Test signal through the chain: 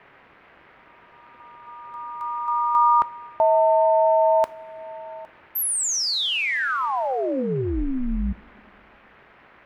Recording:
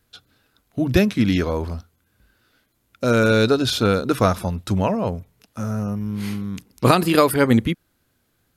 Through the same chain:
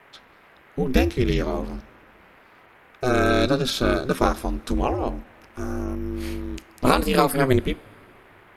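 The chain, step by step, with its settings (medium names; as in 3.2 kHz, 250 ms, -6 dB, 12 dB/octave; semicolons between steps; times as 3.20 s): band noise 180–2200 Hz -50 dBFS; ring modulator 130 Hz; two-slope reverb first 0.28 s, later 2.6 s, from -18 dB, DRR 15.5 dB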